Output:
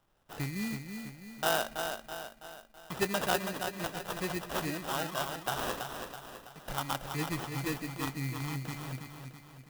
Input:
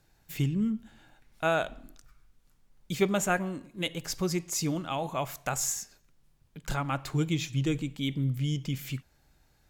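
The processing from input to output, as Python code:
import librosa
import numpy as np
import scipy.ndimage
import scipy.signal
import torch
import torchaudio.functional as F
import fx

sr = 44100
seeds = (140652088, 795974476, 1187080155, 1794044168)

y = fx.sample_hold(x, sr, seeds[0], rate_hz=2200.0, jitter_pct=0)
y = fx.low_shelf(y, sr, hz=480.0, db=-10.0)
y = fx.echo_feedback(y, sr, ms=328, feedback_pct=49, wet_db=-6.5)
y = fx.clock_jitter(y, sr, seeds[1], jitter_ms=0.031)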